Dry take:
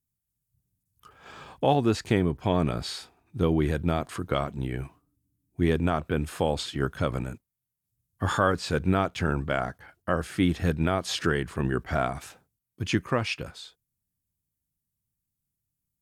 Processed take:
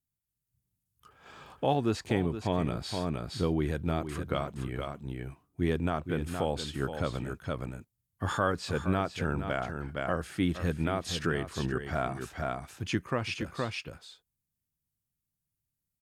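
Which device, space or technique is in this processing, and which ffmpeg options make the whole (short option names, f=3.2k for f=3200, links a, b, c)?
ducked delay: -filter_complex "[0:a]asplit=3[a][b][c];[b]adelay=468,volume=-2dB[d];[c]apad=whole_len=726837[e];[d][e]sidechaincompress=threshold=-30dB:ratio=10:attack=43:release=471[f];[a][f]amix=inputs=2:normalize=0,volume=-5dB"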